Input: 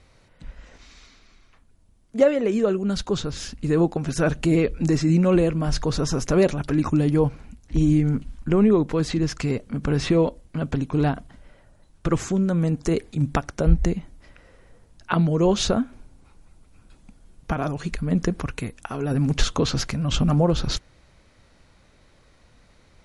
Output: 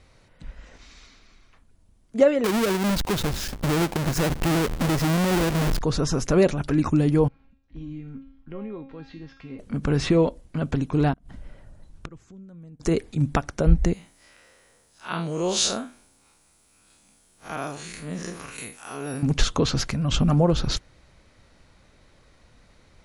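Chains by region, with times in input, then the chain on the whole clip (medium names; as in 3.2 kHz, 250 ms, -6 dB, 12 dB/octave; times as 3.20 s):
2.44–5.81 s: square wave that keeps the level + compression 4:1, threshold -21 dBFS
7.28–9.59 s: low-pass 4 kHz 24 dB/octave + feedback comb 270 Hz, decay 0.64 s, mix 90%
11.13–12.80 s: bass shelf 260 Hz +8.5 dB + inverted gate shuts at -19 dBFS, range -28 dB
13.93–19.23 s: spectral blur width 102 ms + RIAA curve recording
whole clip: none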